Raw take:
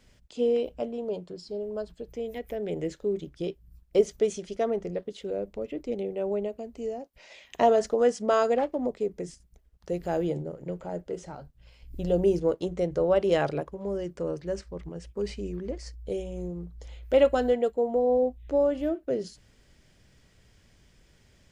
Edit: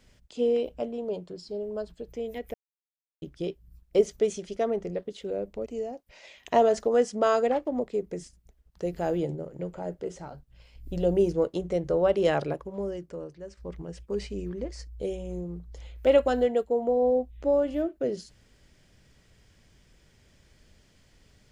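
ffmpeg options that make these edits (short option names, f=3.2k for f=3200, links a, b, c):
-filter_complex "[0:a]asplit=5[a][b][c][d][e];[a]atrim=end=2.54,asetpts=PTS-STARTPTS,afade=t=out:st=2.536:d=0.004:c=hsin[f];[b]atrim=start=2.54:end=3.22,asetpts=PTS-STARTPTS,volume=0[g];[c]atrim=start=3.22:end=5.662,asetpts=PTS-STARTPTS,afade=t=in:d=0.004:c=hsin[h];[d]atrim=start=6.728:end=14.64,asetpts=PTS-STARTPTS,afade=t=out:st=7.132:d=0.78:c=qua:silence=0.281838[i];[e]atrim=start=14.64,asetpts=PTS-STARTPTS,afade=t=in:d=0.004:c=hsin:silence=0.281838[j];[f][g][h]concat=n=3:v=0:a=1[k];[i][j]concat=n=2:v=0:a=1[l];[k][l]acrossfade=d=0.004:c1=hsin:c2=hsin"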